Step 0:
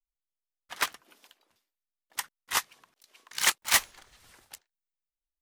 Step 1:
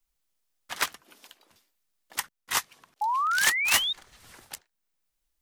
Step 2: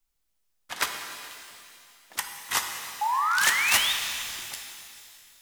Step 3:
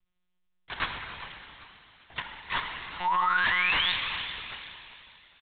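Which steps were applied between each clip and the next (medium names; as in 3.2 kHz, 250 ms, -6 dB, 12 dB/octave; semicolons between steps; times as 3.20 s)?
tone controls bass +4 dB, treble +2 dB; painted sound rise, 3.01–3.93 s, 820–3800 Hz -26 dBFS; three bands compressed up and down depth 40%
pitch-shifted reverb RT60 2.5 s, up +12 st, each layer -8 dB, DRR 4 dB
feedback delay 398 ms, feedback 36%, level -16 dB; hard clipper -20 dBFS, distortion -13 dB; monotone LPC vocoder at 8 kHz 180 Hz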